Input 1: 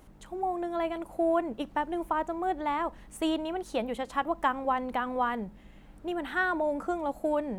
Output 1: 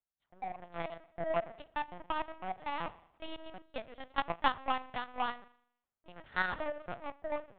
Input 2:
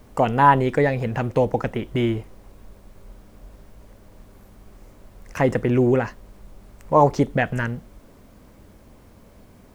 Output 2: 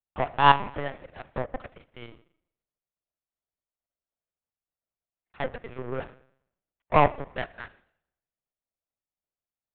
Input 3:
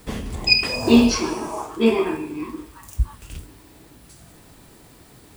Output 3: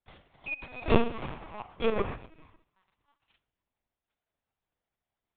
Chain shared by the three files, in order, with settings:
high-pass 450 Hz 12 dB/octave; spring tank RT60 1.3 s, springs 38 ms, chirp 55 ms, DRR 7 dB; low-pass that closes with the level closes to 1.7 kHz, closed at -18 dBFS; power-law waveshaper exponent 2; LPC vocoder at 8 kHz pitch kept; trim +3 dB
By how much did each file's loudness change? -7.5 LU, -5.5 LU, -11.5 LU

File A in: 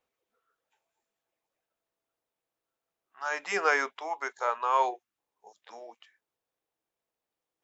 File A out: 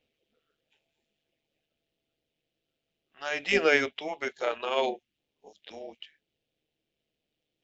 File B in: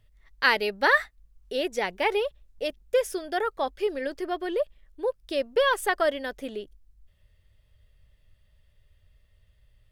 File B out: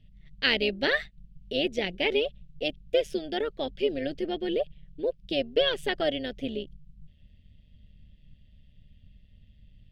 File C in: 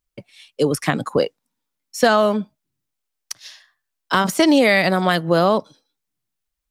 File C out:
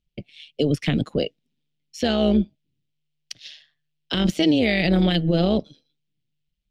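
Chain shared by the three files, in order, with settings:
FFT filter 210 Hz 0 dB, 660 Hz -10 dB, 1 kHz -25 dB, 3 kHz 0 dB, 9.9 kHz -22 dB; peak limiter -16.5 dBFS; AM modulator 150 Hz, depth 40%; peak normalisation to -9 dBFS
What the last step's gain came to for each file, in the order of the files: +15.5 dB, +9.0 dB, +7.5 dB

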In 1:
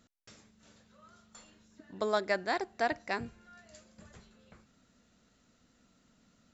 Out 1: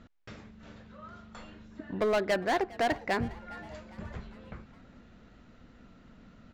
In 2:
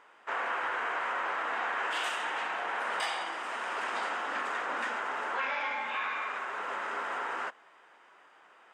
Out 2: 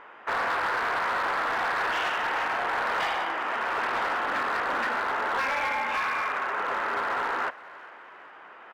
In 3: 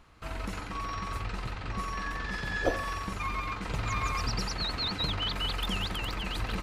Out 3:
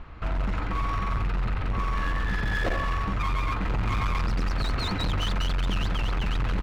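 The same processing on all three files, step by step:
low-pass 2.6 kHz 12 dB/octave; bass shelf 79 Hz +10 dB; in parallel at -1 dB: compression, threshold -44 dBFS; on the sum: overload inside the chain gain 28.5 dB; frequency-shifting echo 407 ms, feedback 52%, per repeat +77 Hz, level -20.5 dB; trim +5.5 dB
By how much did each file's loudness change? +2.0 LU, +6.0 LU, +4.5 LU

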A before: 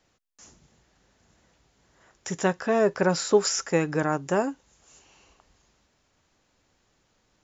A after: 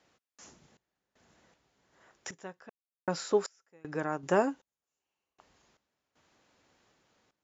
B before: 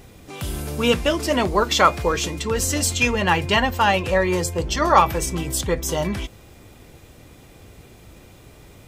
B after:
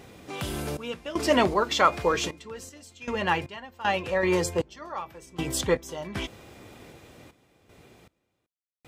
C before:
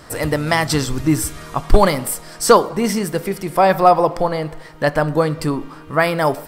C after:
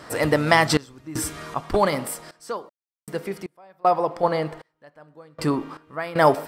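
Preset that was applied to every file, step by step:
high-pass 200 Hz 6 dB/octave; treble shelf 6.5 kHz -9 dB; random-step tremolo 2.6 Hz, depth 100%; trim +2 dB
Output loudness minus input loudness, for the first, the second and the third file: -8.0 LU, -7.0 LU, -6.0 LU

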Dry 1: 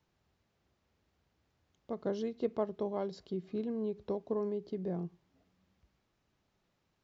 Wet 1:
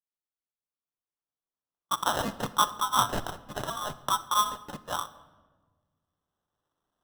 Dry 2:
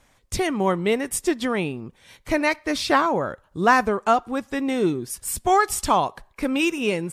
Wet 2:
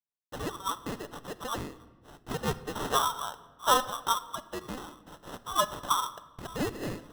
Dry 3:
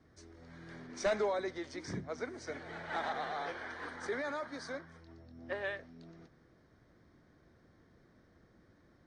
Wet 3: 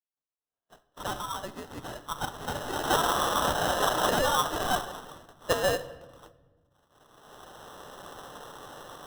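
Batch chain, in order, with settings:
recorder AGC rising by 6.3 dB/s; steep high-pass 960 Hz 72 dB/octave; gate -49 dBFS, range -40 dB; steep low-pass 7.5 kHz 36 dB/octave; treble shelf 5.5 kHz -10 dB; sample-rate reducer 2.3 kHz, jitter 0%; simulated room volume 1100 m³, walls mixed, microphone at 0.36 m; peak normalisation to -12 dBFS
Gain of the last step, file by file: +14.5 dB, -4.5 dB, +0.5 dB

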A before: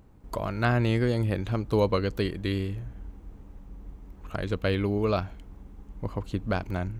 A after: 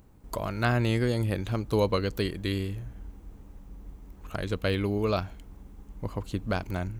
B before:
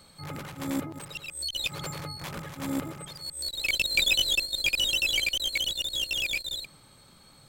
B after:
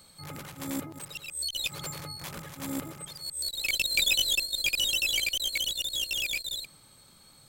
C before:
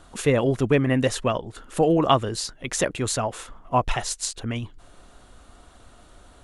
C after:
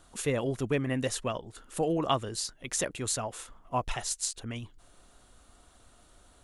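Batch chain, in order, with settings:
treble shelf 5.1 kHz +9 dB; peak normalisation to -12 dBFS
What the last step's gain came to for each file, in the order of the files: -1.5 dB, -4.0 dB, -9.5 dB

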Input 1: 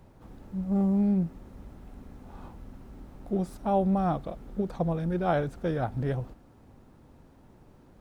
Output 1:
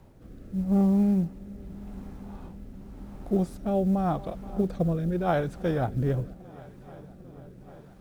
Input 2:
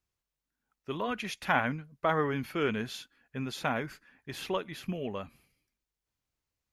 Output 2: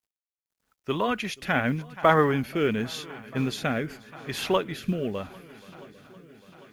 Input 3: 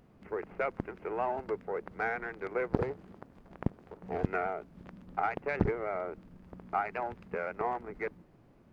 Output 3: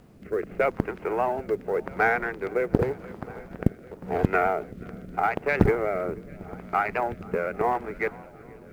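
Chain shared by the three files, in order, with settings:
shuffle delay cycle 799 ms, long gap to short 1.5:1, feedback 68%, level -22.5 dB; rotary cabinet horn 0.85 Hz; companded quantiser 8-bit; normalise loudness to -27 LUFS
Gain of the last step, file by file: +3.5 dB, +9.0 dB, +11.0 dB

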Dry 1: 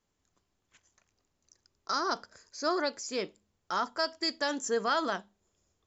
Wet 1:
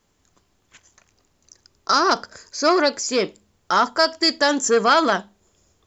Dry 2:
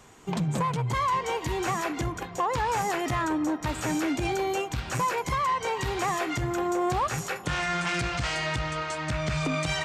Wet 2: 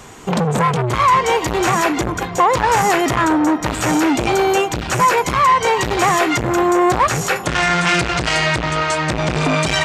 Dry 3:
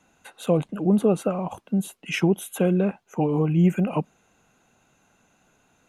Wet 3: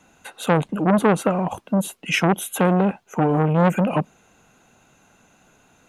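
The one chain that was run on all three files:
transformer saturation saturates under 940 Hz; peak normalisation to -2 dBFS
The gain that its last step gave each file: +13.5 dB, +14.5 dB, +6.5 dB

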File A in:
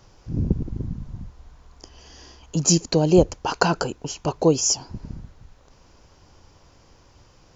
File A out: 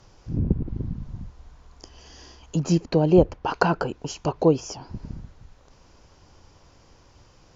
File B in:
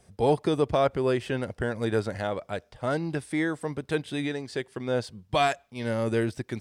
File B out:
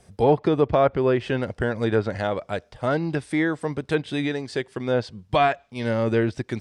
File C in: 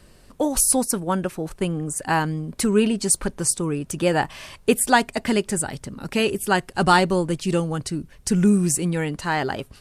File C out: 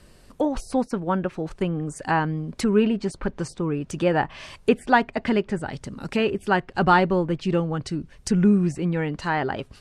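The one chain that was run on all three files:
low-pass that closes with the level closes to 2.5 kHz, closed at -20 dBFS; treble shelf 11 kHz -3 dB; normalise loudness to -24 LUFS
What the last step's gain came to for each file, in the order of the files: -0.5 dB, +4.5 dB, -0.5 dB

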